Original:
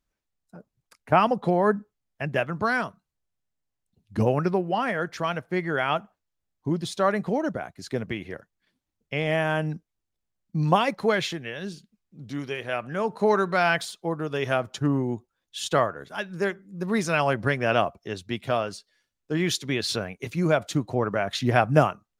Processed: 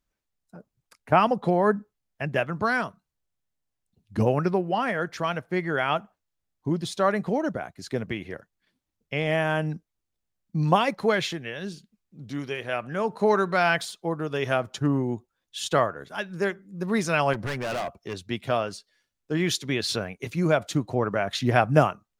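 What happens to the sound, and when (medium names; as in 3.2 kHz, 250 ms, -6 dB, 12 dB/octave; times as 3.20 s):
17.33–18.17 s: overload inside the chain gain 26.5 dB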